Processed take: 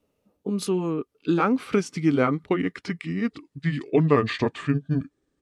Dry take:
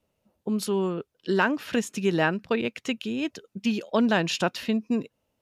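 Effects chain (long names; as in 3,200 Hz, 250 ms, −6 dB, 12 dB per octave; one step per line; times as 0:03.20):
pitch glide at a constant tempo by −9 semitones starting unshifted
hollow resonant body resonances 280/430/1,200 Hz, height 9 dB, ringing for 45 ms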